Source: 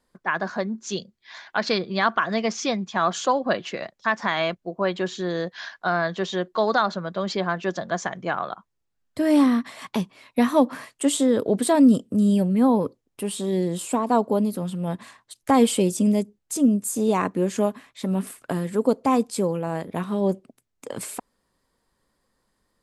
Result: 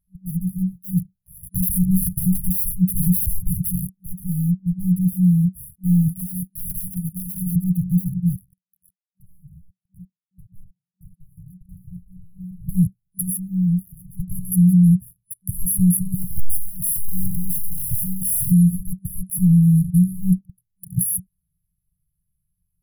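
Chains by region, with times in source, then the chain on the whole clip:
1.43–3.94 HPF 230 Hz + sample leveller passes 3
6.08–7.56 half-waves squared off + three-band isolator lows -20 dB, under 390 Hz, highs -17 dB, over 6100 Hz
8.36–12.69 reverse delay 0.273 s, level -6 dB + auto-wah 370–1700 Hz, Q 16, down, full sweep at -18 dBFS
13.37–14.2 air absorption 210 m + core saturation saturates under 3300 Hz
16.14–18.52 infinite clipping + resonator 590 Hz, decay 0.29 s, mix 80% + feedback echo 93 ms, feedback 42%, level -18 dB
whole clip: sample leveller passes 3; FFT band-reject 190–10000 Hz; maximiser +16 dB; gain -7 dB

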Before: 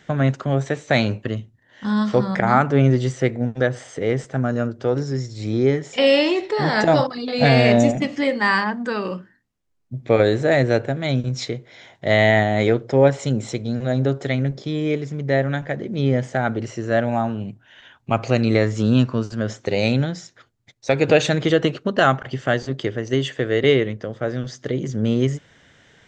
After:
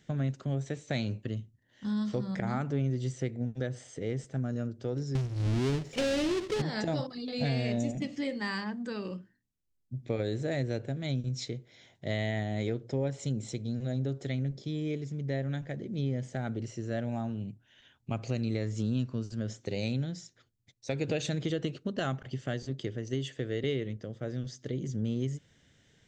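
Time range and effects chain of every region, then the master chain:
5.15–6.62 half-waves squared off + sample leveller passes 1 + air absorption 110 m
whole clip: bell 1100 Hz -12 dB 2.7 oct; compressor 2.5:1, threshold -22 dBFS; gain -6.5 dB

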